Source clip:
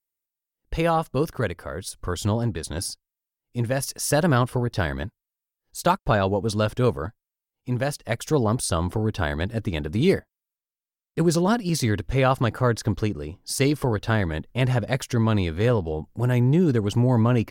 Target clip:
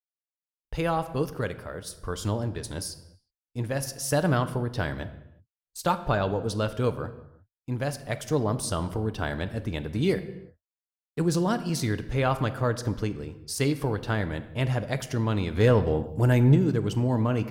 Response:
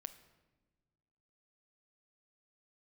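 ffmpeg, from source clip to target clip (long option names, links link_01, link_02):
-filter_complex "[0:a]agate=range=-25dB:threshold=-45dB:ratio=16:detection=peak,asettb=1/sr,asplit=3[link_01][link_02][link_03];[link_01]atrim=end=15.554[link_04];[link_02]atrim=start=15.55:end=16.55,asetpts=PTS-STARTPTS,afade=type=in:duration=0.004:curve=qsin,afade=type=out:start_time=0.996:duration=0.004:curve=qsin,acontrast=70[link_05];[link_03]atrim=start=16.546[link_06];[link_04][link_05]acrossfade=duration=0.004:curve1=hsin:curve2=qsin[link_07];[link_07][link_06]acrossfade=duration=0.004:curve1=qsin:curve2=hsin[link_08];[1:a]atrim=start_sample=2205,afade=type=out:start_time=0.42:duration=0.01,atrim=end_sample=18963[link_09];[link_08][link_09]afir=irnorm=-1:irlink=0"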